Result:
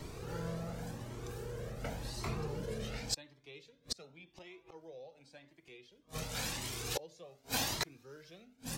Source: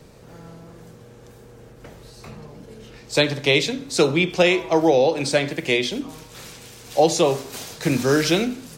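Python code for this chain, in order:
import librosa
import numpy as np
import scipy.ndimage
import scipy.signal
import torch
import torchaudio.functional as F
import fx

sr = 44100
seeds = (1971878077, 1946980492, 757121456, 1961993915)

y = fx.dynamic_eq(x, sr, hz=8400.0, q=1.7, threshold_db=-44.0, ratio=4.0, max_db=-6)
y = fx.gate_flip(y, sr, shuts_db=-22.0, range_db=-37)
y = fx.comb_cascade(y, sr, direction='rising', hz=0.9)
y = F.gain(torch.from_numpy(y), 6.0).numpy()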